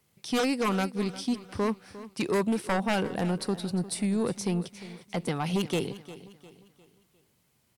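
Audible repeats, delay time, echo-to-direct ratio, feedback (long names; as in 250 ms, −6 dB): 3, 353 ms, −15.0 dB, 41%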